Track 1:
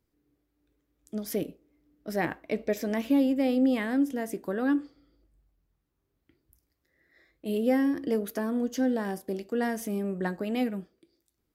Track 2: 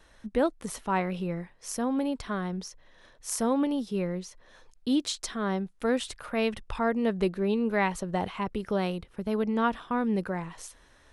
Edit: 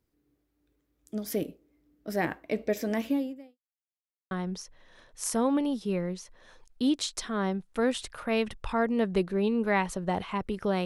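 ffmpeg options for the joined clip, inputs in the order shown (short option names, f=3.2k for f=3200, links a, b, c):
-filter_complex "[0:a]apad=whole_dur=10.85,atrim=end=10.85,asplit=2[a][b];[a]atrim=end=3.58,asetpts=PTS-STARTPTS,afade=t=out:st=3.02:d=0.56:c=qua[c];[b]atrim=start=3.58:end=4.31,asetpts=PTS-STARTPTS,volume=0[d];[1:a]atrim=start=2.37:end=8.91,asetpts=PTS-STARTPTS,afade=t=in:d=0.004:c=hsin[e];[c][d][e]concat=n=3:v=0:a=1"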